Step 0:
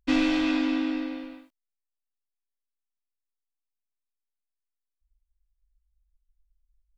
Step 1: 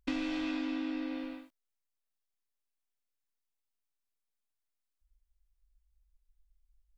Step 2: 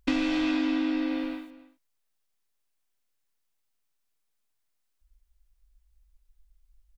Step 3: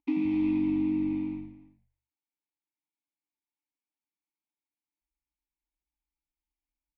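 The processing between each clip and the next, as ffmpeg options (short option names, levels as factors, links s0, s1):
-af "acompressor=threshold=0.0224:ratio=5"
-filter_complex "[0:a]asplit=2[s0][s1];[s1]adelay=279.9,volume=0.141,highshelf=f=4000:g=-6.3[s2];[s0][s2]amix=inputs=2:normalize=0,volume=2.51"
-filter_complex "[0:a]asplit=3[s0][s1][s2];[s0]bandpass=f=300:t=q:w=8,volume=1[s3];[s1]bandpass=f=870:t=q:w=8,volume=0.501[s4];[s2]bandpass=f=2240:t=q:w=8,volume=0.355[s5];[s3][s4][s5]amix=inputs=3:normalize=0,asplit=5[s6][s7][s8][s9][s10];[s7]adelay=83,afreqshift=-95,volume=0.237[s11];[s8]adelay=166,afreqshift=-190,volume=0.107[s12];[s9]adelay=249,afreqshift=-285,volume=0.0479[s13];[s10]adelay=332,afreqshift=-380,volume=0.0216[s14];[s6][s11][s12][s13][s14]amix=inputs=5:normalize=0,volume=1.26"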